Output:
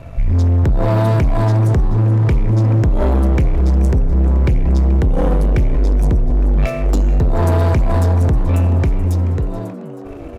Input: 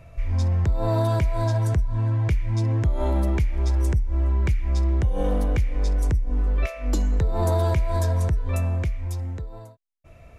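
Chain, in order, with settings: sample leveller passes 3; tilt shelf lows +3.5 dB, about 1100 Hz; frequency-shifting echo 0.431 s, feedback 65%, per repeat +98 Hz, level -17 dB

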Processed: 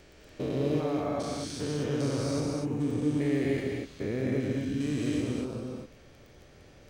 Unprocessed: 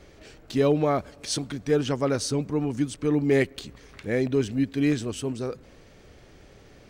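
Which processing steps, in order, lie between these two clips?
stepped spectrum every 0.4 s; non-linear reverb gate 0.27 s rising, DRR 0 dB; crackle 14/s -39 dBFS; gain -4 dB

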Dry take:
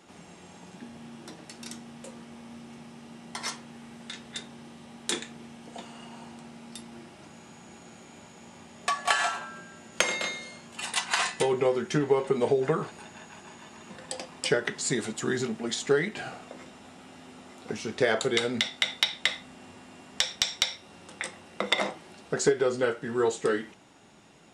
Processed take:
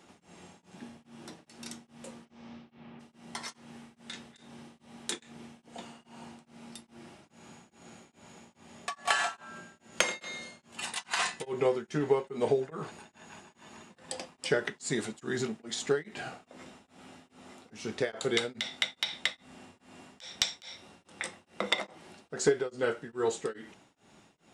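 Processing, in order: 2.25–2.99 LPF 7300 Hz -> 3000 Hz 24 dB/oct; beating tremolo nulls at 2.4 Hz; gain -2 dB

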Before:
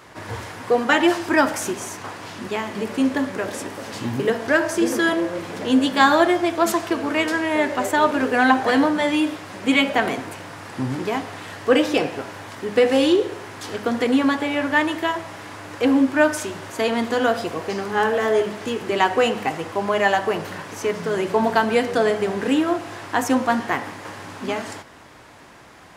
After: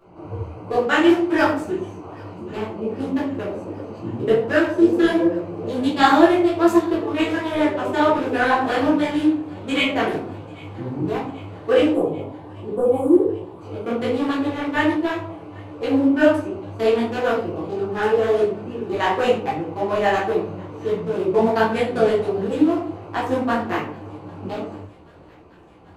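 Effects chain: Wiener smoothing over 25 samples; 11.89–13.58 elliptic band-stop 1100–8700 Hz; thin delay 0.788 s, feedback 74%, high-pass 1700 Hz, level -23.5 dB; shoebox room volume 45 m³, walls mixed, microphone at 1.1 m; detuned doubles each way 46 cents; gain -2.5 dB

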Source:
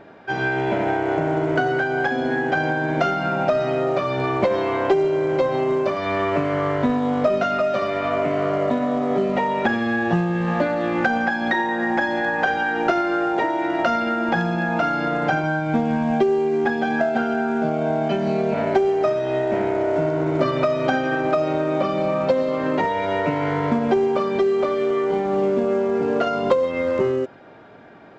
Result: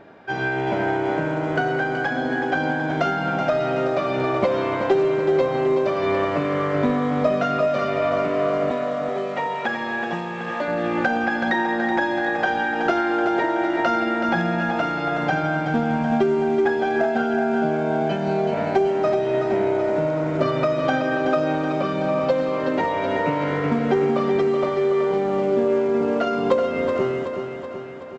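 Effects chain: 8.71–10.68 HPF 610 Hz 6 dB/oct; feedback echo 0.376 s, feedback 59%, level -7 dB; gain -1.5 dB

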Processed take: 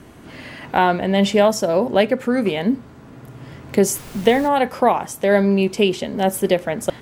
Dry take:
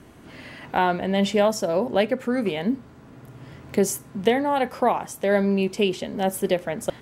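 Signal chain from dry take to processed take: 3.94–4.47 added noise pink -44 dBFS; gain +5 dB

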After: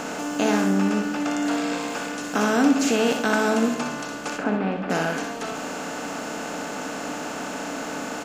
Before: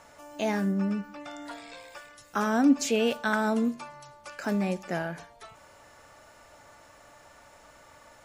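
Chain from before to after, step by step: per-bin compression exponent 0.4; 4.38–4.9 air absorption 440 m; tapped delay 62/195 ms -7/-19 dB

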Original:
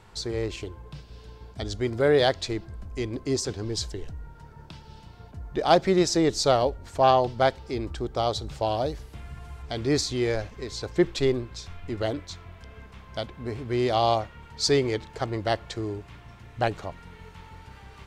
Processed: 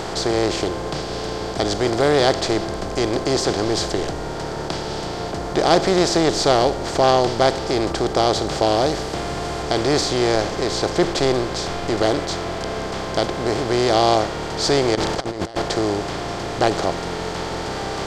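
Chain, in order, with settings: per-bin compression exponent 0.4; 14.95–15.62 negative-ratio compressor -24 dBFS, ratio -0.5

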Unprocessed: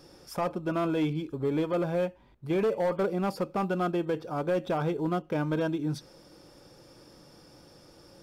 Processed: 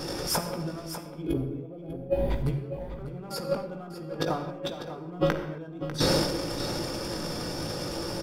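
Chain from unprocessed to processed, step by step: spectral gain 1.26–2.31, 830–9300 Hz -15 dB; de-hum 276.6 Hz, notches 19; transient shaper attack -6 dB, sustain +11 dB; negative-ratio compressor -39 dBFS, ratio -0.5; echo 0.596 s -11 dB; reverb, pre-delay 18 ms, DRR 5 dB; mismatched tape noise reduction decoder only; gain +8 dB

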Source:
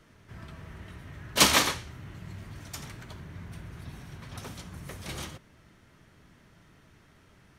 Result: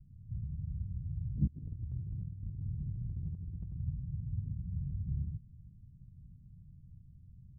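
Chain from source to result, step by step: inverse Chebyshev low-pass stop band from 880 Hz, stop band 80 dB; 1.47–3.77 negative-ratio compressor -47 dBFS, ratio -0.5; gain +8 dB

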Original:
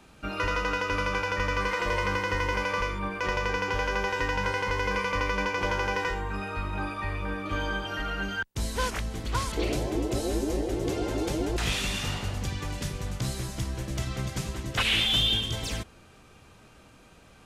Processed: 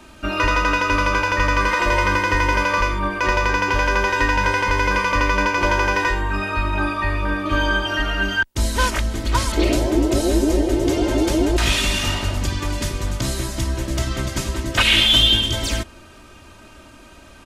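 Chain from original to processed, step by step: comb 3.2 ms, depth 58%; gain +8.5 dB

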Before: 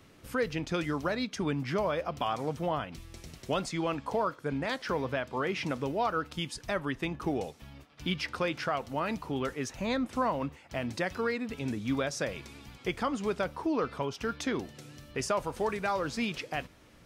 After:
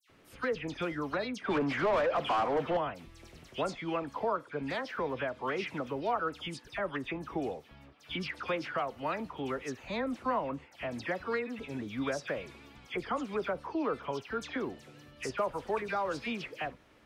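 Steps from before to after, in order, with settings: tone controls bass -6 dB, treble -8 dB; dispersion lows, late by 94 ms, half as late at 2500 Hz; 1.44–2.77 overdrive pedal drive 23 dB, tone 1300 Hz, clips at -18.5 dBFS; gain -1.5 dB

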